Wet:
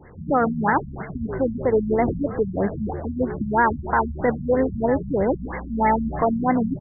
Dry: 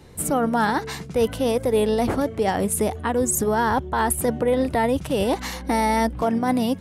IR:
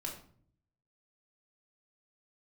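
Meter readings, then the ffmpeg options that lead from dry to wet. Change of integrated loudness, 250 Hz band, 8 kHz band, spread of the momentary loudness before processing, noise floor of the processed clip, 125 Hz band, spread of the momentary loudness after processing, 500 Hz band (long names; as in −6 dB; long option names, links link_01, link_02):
−0.5 dB, 0.0 dB, below −40 dB, 3 LU, −36 dBFS, +1.5 dB, 7 LU, −1.0 dB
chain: -filter_complex "[0:a]asplit=7[link_01][link_02][link_03][link_04][link_05][link_06][link_07];[link_02]adelay=124,afreqshift=-67,volume=-13dB[link_08];[link_03]adelay=248,afreqshift=-134,volume=-18.4dB[link_09];[link_04]adelay=372,afreqshift=-201,volume=-23.7dB[link_10];[link_05]adelay=496,afreqshift=-268,volume=-29.1dB[link_11];[link_06]adelay=620,afreqshift=-335,volume=-34.4dB[link_12];[link_07]adelay=744,afreqshift=-402,volume=-39.8dB[link_13];[link_01][link_08][link_09][link_10][link_11][link_12][link_13]amix=inputs=7:normalize=0,crystalizer=i=9:c=0,afftfilt=real='re*lt(b*sr/1024,220*pow(2200/220,0.5+0.5*sin(2*PI*3.1*pts/sr)))':imag='im*lt(b*sr/1024,220*pow(2200/220,0.5+0.5*sin(2*PI*3.1*pts/sr)))':win_size=1024:overlap=0.75"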